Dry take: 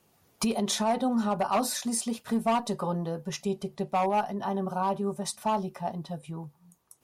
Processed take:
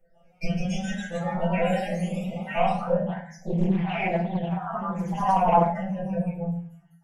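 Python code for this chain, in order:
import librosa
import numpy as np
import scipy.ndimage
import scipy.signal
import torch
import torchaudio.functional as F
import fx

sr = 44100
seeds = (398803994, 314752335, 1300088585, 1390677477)

y = fx.spec_dropout(x, sr, seeds[0], share_pct=75)
y = scipy.signal.sosfilt(scipy.signal.butter(2, 3000.0, 'lowpass', fs=sr, output='sos'), y)
y = y + 0.65 * np.pad(y, (int(4.5 * sr / 1000.0), 0))[:len(y)]
y = fx.rider(y, sr, range_db=4, speed_s=2.0)
y = fx.robotise(y, sr, hz=170.0)
y = fx.fixed_phaser(y, sr, hz=1100.0, stages=6)
y = fx.echo_pitch(y, sr, ms=178, semitones=1, count=3, db_per_echo=-3.0)
y = fx.room_shoebox(y, sr, seeds[1], volume_m3=56.0, walls='mixed', distance_m=2.5)
y = fx.doppler_dist(y, sr, depth_ms=0.45, at=(3.06, 5.72))
y = y * 10.0 ** (1.5 / 20.0)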